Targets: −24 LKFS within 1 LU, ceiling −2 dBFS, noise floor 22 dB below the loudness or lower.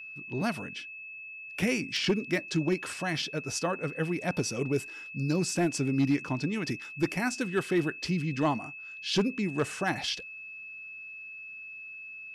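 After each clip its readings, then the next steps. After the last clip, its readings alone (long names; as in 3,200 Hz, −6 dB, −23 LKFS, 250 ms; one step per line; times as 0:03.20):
share of clipped samples 0.3%; peaks flattened at −19.0 dBFS; interfering tone 2,600 Hz; level of the tone −41 dBFS; integrated loudness −31.5 LKFS; sample peak −19.0 dBFS; target loudness −24.0 LKFS
→ clipped peaks rebuilt −19 dBFS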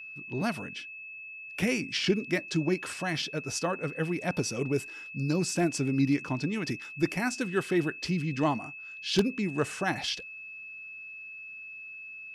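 share of clipped samples 0.0%; interfering tone 2,600 Hz; level of the tone −41 dBFS
→ notch filter 2,600 Hz, Q 30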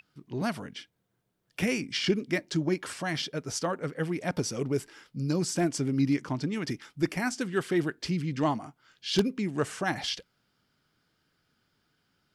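interfering tone none found; integrated loudness −30.5 LKFS; sample peak −9.5 dBFS; target loudness −24.0 LKFS
→ level +6.5 dB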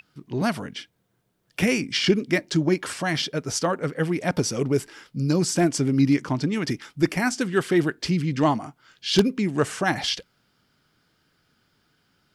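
integrated loudness −24.0 LKFS; sample peak −3.0 dBFS; background noise floor −70 dBFS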